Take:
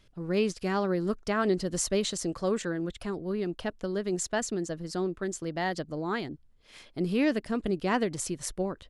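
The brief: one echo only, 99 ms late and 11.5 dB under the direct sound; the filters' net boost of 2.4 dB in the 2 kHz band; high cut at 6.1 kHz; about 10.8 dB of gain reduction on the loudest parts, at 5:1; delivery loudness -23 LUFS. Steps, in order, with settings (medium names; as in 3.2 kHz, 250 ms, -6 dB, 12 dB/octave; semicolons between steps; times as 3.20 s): low-pass 6.1 kHz; peaking EQ 2 kHz +3 dB; compression 5:1, threshold -34 dBFS; delay 99 ms -11.5 dB; trim +15 dB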